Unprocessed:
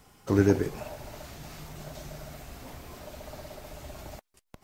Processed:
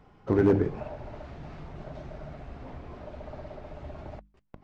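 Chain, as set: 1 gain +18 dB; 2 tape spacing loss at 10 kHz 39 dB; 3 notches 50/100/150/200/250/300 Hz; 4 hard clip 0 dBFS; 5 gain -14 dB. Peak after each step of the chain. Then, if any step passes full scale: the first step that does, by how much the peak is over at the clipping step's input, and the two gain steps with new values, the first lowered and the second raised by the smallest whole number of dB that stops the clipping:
+9.0, +8.0, +5.0, 0.0, -14.0 dBFS; step 1, 5.0 dB; step 1 +13 dB, step 5 -9 dB

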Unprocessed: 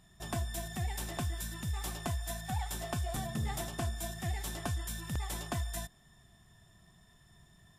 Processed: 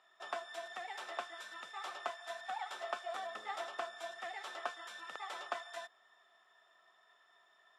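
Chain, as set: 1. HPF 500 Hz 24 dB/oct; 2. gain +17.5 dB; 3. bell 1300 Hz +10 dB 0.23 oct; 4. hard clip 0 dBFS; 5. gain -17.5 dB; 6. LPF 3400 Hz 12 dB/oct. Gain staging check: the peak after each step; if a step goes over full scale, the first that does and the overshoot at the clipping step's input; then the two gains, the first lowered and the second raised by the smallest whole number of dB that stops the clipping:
-22.5, -5.0, -4.5, -4.5, -22.0, -23.0 dBFS; no overload

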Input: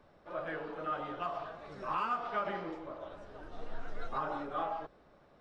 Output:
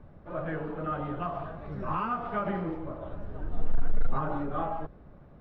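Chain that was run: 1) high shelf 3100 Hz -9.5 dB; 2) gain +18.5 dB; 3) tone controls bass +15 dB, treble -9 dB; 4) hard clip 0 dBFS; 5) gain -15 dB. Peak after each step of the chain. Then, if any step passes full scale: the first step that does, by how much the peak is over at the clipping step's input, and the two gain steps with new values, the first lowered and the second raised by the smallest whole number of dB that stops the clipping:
-24.5, -6.0, +4.5, 0.0, -15.0 dBFS; step 3, 4.5 dB; step 2 +13.5 dB, step 5 -10 dB

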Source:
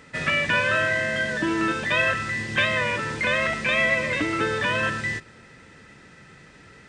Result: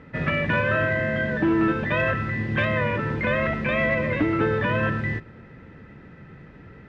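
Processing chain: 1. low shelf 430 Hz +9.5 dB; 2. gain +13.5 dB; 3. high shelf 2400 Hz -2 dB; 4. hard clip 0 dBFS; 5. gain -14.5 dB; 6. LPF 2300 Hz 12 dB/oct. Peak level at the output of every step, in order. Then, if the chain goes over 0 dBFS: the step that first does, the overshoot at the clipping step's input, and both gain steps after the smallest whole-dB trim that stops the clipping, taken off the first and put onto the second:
-6.5, +7.0, +7.0, 0.0, -14.5, -14.0 dBFS; step 2, 7.0 dB; step 2 +6.5 dB, step 5 -7.5 dB

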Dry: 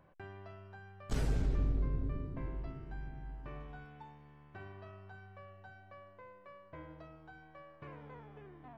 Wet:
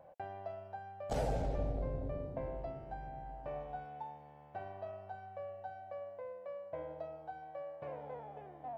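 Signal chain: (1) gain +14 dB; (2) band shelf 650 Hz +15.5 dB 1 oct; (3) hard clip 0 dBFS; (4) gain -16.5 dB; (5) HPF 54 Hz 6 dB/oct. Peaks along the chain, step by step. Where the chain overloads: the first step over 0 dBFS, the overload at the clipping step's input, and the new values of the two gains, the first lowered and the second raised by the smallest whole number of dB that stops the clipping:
-9.5, -5.5, -5.5, -22.0, -23.5 dBFS; no overload

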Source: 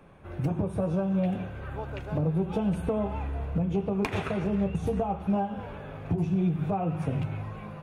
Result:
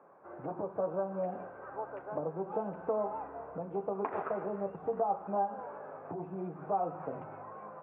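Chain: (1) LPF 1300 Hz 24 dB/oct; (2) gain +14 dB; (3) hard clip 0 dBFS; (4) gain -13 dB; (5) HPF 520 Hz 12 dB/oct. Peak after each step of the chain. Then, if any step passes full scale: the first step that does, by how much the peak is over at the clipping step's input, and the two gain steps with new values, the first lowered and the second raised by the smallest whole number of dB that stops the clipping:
-17.5, -3.5, -3.5, -16.5, -20.5 dBFS; no overload

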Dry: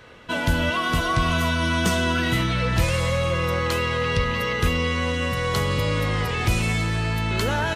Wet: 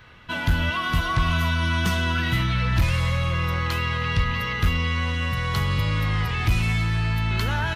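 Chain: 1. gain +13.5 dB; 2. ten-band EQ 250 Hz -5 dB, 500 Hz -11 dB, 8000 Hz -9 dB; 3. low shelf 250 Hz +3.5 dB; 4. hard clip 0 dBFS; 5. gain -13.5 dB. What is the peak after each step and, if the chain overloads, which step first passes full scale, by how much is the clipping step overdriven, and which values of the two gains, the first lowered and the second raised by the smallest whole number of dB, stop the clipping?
+3.5, +2.5, +5.0, 0.0, -13.5 dBFS; step 1, 5.0 dB; step 1 +8.5 dB, step 5 -8.5 dB

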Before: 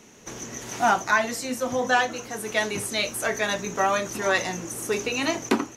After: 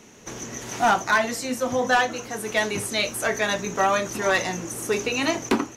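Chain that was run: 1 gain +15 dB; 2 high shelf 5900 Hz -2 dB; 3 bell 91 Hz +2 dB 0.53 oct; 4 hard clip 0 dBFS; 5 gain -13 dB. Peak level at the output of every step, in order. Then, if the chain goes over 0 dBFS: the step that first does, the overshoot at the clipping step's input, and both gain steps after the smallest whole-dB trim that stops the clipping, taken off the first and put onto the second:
+6.5, +6.5, +6.5, 0.0, -13.0 dBFS; step 1, 6.5 dB; step 1 +8 dB, step 5 -6 dB

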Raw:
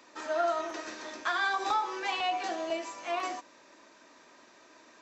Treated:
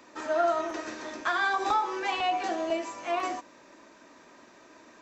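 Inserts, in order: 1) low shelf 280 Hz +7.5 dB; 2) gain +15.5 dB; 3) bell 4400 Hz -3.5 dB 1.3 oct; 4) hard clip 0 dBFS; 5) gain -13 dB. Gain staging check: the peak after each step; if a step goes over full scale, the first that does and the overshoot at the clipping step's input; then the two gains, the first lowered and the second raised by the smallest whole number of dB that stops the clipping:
-18.0, -2.5, -2.5, -2.5, -15.5 dBFS; no overload

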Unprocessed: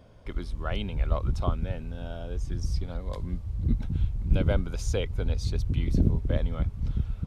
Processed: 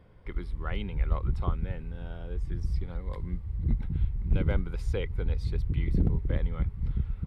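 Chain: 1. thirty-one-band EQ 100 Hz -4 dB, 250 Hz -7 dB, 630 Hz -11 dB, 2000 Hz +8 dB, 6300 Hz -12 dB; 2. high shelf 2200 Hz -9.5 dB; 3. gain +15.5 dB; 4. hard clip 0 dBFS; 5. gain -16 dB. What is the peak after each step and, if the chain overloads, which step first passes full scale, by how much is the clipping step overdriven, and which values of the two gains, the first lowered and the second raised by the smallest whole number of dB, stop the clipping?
-10.0, -10.0, +5.5, 0.0, -16.0 dBFS; step 3, 5.5 dB; step 3 +9.5 dB, step 5 -10 dB

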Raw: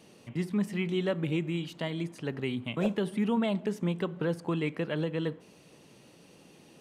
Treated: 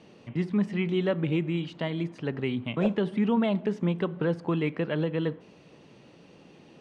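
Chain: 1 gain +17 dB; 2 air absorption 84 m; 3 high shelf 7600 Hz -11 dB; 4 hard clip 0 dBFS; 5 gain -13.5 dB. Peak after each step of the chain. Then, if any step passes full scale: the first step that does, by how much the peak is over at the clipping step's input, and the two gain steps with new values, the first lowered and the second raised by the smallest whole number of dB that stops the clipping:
-2.5, -2.5, -2.5, -2.5, -16.0 dBFS; no overload

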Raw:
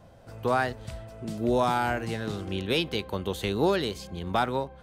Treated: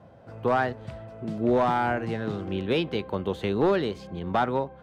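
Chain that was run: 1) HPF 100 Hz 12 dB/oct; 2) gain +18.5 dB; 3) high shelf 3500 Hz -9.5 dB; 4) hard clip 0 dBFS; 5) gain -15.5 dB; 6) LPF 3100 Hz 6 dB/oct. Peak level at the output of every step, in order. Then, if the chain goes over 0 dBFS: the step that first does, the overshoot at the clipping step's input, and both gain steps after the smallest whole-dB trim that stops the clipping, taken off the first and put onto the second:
-12.5, +6.0, +5.5, 0.0, -15.5, -15.5 dBFS; step 2, 5.5 dB; step 2 +12.5 dB, step 5 -9.5 dB

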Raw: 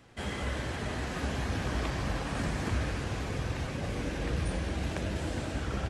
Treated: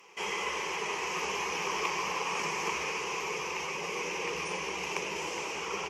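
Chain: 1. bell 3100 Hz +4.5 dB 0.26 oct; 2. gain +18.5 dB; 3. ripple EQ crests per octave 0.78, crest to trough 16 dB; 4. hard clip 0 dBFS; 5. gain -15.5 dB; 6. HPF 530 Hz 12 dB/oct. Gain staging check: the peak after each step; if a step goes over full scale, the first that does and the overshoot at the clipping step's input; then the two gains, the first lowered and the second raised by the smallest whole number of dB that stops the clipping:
-20.0, -1.5, +3.0, 0.0, -15.5, -15.5 dBFS; step 3, 3.0 dB; step 2 +15.5 dB, step 5 -12.5 dB

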